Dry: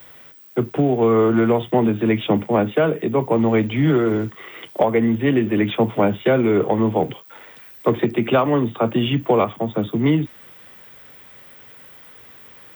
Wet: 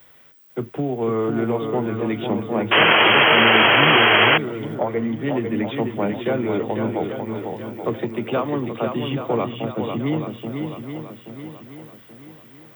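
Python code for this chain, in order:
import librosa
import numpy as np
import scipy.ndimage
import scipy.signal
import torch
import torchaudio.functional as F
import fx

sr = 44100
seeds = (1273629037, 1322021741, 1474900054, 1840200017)

y = fx.high_shelf_res(x, sr, hz=2200.0, db=-7.5, q=1.5, at=(4.75, 5.24))
y = fx.echo_swing(y, sr, ms=829, ratio=1.5, feedback_pct=40, wet_db=-5.5)
y = fx.spec_paint(y, sr, seeds[0], shape='noise', start_s=2.71, length_s=1.67, low_hz=310.0, high_hz=3300.0, level_db=-8.0)
y = y * librosa.db_to_amplitude(-6.5)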